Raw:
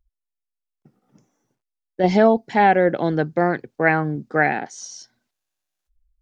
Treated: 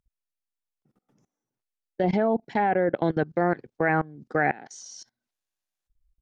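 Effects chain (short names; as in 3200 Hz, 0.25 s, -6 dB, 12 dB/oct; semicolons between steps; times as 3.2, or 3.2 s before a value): treble ducked by the level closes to 2000 Hz, closed at -12.5 dBFS; level quantiser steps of 22 dB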